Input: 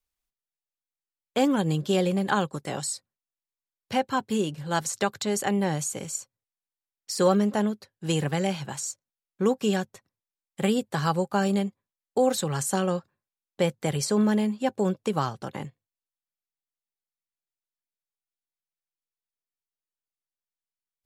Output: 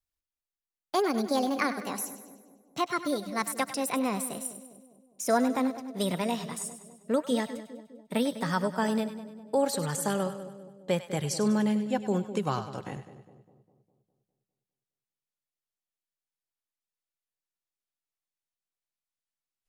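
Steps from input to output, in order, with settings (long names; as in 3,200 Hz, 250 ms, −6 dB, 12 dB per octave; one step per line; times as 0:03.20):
gliding playback speed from 147% → 67%
echo with a time of its own for lows and highs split 670 Hz, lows 203 ms, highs 99 ms, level −12 dB
level −3.5 dB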